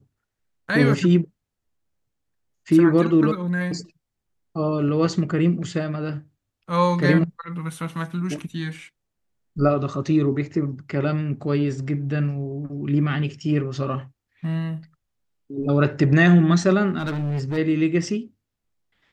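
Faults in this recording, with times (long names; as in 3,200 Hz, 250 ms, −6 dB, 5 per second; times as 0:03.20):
0:16.98–0:17.58: clipping −22 dBFS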